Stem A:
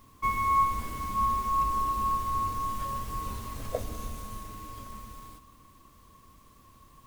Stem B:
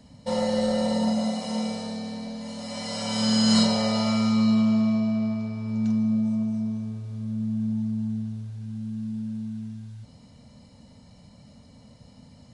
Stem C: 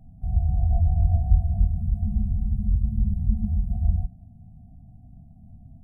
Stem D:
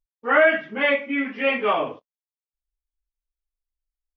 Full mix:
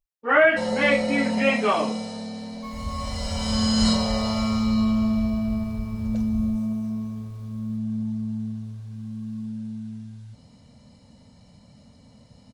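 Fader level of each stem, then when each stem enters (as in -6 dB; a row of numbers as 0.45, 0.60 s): -13.0, -1.0, -11.0, -0.5 dB; 2.40, 0.30, 2.50, 0.00 s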